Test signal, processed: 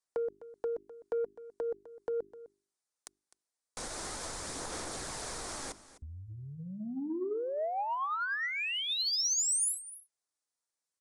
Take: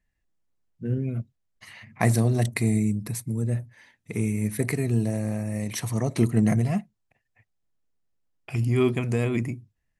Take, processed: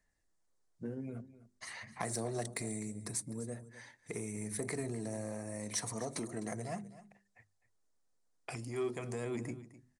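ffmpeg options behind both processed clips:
-filter_complex "[0:a]bandreject=f=50:t=h:w=6,bandreject=f=100:t=h:w=6,bandreject=f=150:t=h:w=6,bandreject=f=200:t=h:w=6,bandreject=f=250:t=h:w=6,bandreject=f=300:t=h:w=6,bandreject=f=350:t=h:w=6,bandreject=f=400:t=h:w=6,aresample=22050,aresample=44100,equalizer=f=2.8k:w=1.8:g=-10,acrossover=split=310|3000[a][b][c];[a]acompressor=threshold=-27dB:ratio=6[d];[d][b][c]amix=inputs=3:normalize=0,asplit=2[e][f];[f]alimiter=limit=-21dB:level=0:latency=1,volume=0dB[g];[e][g]amix=inputs=2:normalize=0,acompressor=threshold=-33dB:ratio=2.5,aphaser=in_gain=1:out_gain=1:delay=4.3:decay=0.23:speed=0.42:type=sinusoidal,asoftclip=type=tanh:threshold=-20.5dB,bass=f=250:g=-9,treble=f=4k:g=4,aecho=1:1:255:0.15,volume=-3.5dB"

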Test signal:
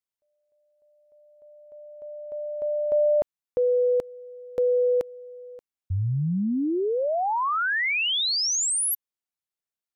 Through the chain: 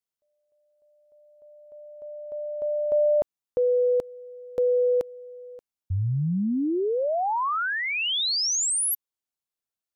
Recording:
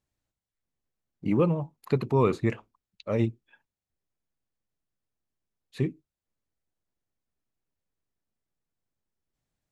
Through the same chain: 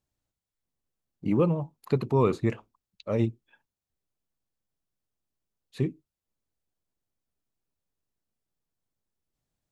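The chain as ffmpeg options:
-af "equalizer=f=2k:w=1.5:g=-3.5"

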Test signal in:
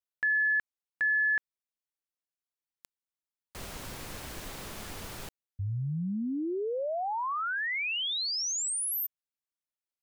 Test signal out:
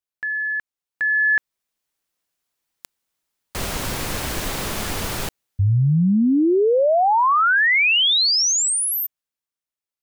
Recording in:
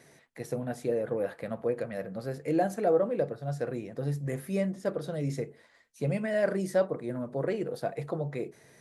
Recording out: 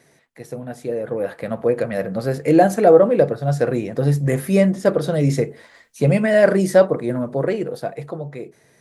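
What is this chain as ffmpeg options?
-af "dynaudnorm=f=140:g=21:m=14dB,volume=1.5dB"

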